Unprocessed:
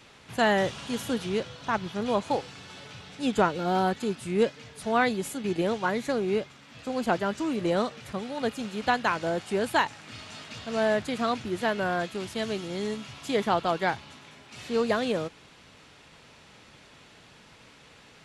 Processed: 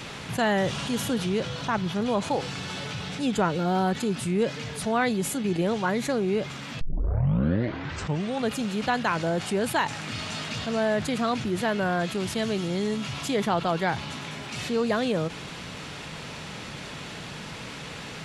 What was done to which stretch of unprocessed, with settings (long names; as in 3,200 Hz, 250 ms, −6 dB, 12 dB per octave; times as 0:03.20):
0:06.81: tape start 1.69 s
whole clip: parametric band 160 Hz +6 dB 0.73 octaves; envelope flattener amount 50%; level −3 dB